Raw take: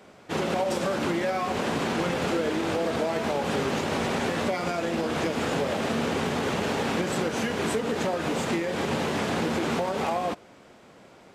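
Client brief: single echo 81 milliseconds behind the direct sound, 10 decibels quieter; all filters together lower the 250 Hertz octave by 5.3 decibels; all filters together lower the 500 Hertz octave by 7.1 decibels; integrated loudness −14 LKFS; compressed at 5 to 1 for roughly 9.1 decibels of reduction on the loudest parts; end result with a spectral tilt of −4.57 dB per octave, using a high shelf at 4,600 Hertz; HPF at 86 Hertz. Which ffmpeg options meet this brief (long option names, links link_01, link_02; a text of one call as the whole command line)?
ffmpeg -i in.wav -af "highpass=86,equalizer=frequency=250:width_type=o:gain=-4.5,equalizer=frequency=500:width_type=o:gain=-7.5,highshelf=frequency=4600:gain=-6.5,acompressor=threshold=-38dB:ratio=5,aecho=1:1:81:0.316,volume=26dB" out.wav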